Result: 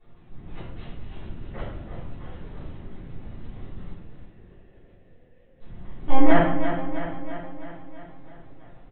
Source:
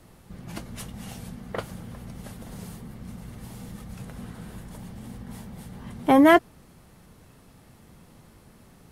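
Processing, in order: 3.91–5.61 vowel filter e; on a send: feedback echo 0.329 s, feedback 60%, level -8.5 dB; on the sum: LPC vocoder at 8 kHz pitch kept; shoebox room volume 150 m³, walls mixed, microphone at 3.4 m; gain -14.5 dB

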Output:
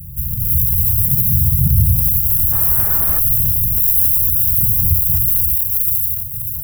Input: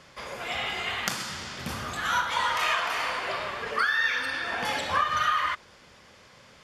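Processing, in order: half-waves squared off; inverse Chebyshev band-stop 400–5200 Hz, stop band 60 dB; 0.91–1.81 flutter echo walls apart 11.5 m, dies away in 0.71 s; 2.51–3.18 band noise 130–1600 Hz -57 dBFS; 4.65–5.22 bell 2100 Hz -8 dB 0.69 oct; thin delay 0.597 s, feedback 36%, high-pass 5500 Hz, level -5.5 dB; maximiser +27.5 dB; gain -1 dB

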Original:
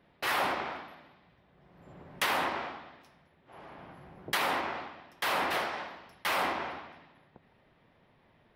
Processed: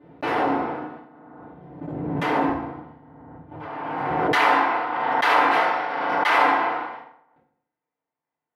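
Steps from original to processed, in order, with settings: gate -52 dBFS, range -33 dB; band-pass 280 Hz, Q 0.65, from 2.49 s 110 Hz, from 3.6 s 1000 Hz; FDN reverb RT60 0.71 s, low-frequency decay 1×, high-frequency decay 0.65×, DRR -10 dB; backwards sustainer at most 23 dB/s; gain +2 dB

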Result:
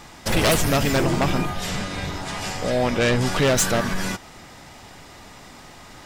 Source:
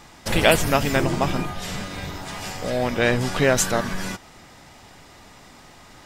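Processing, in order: one-sided fold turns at -16 dBFS; 1.69–3.26 LPF 11000 Hz 12 dB/oct; soft clip -15 dBFS, distortion -12 dB; gain +3.5 dB

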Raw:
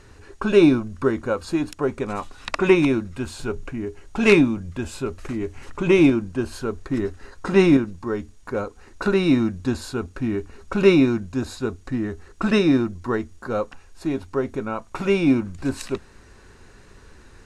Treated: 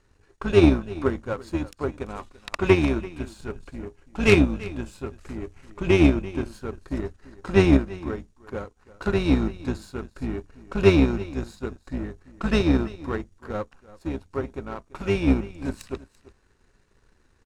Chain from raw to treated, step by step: octaver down 2 oct, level -2 dB; echo 0.338 s -14 dB; power-law curve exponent 1.4

